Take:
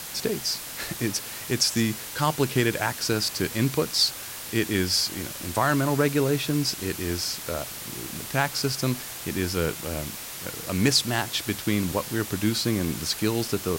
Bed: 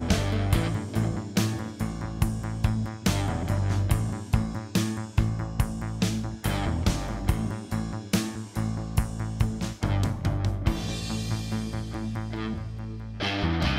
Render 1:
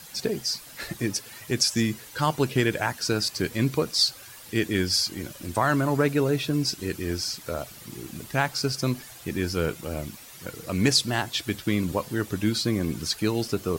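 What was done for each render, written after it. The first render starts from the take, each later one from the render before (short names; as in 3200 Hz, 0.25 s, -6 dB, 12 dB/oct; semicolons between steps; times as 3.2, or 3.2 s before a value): denoiser 11 dB, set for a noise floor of -37 dBFS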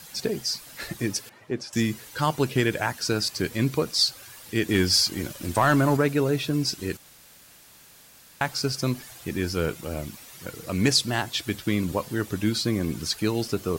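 1.29–1.73 band-pass 460 Hz, Q 0.56; 4.68–5.97 sample leveller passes 1; 6.97–8.41 room tone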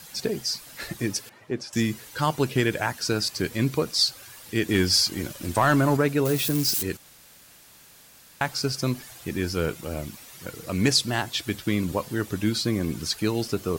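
6.25–6.83 switching spikes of -21 dBFS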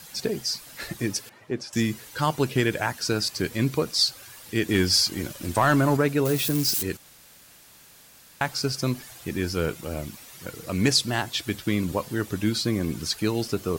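nothing audible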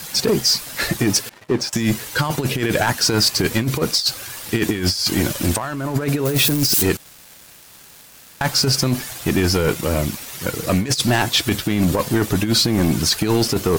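negative-ratio compressor -26 dBFS, ratio -0.5; sample leveller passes 3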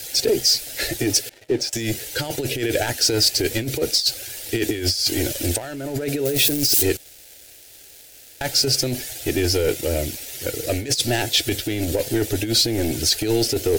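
fixed phaser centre 450 Hz, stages 4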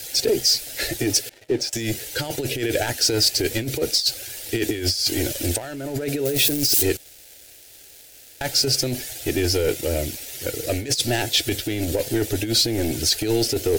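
gain -1 dB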